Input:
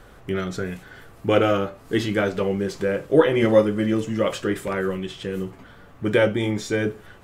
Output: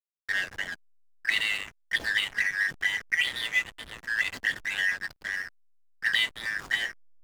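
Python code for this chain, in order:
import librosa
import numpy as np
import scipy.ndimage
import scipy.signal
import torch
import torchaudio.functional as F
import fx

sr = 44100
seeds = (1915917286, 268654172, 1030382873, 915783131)

y = fx.band_shuffle(x, sr, order='4123')
y = fx.env_flanger(y, sr, rest_ms=4.2, full_db=-18.0)
y = fx.backlash(y, sr, play_db=-27.5)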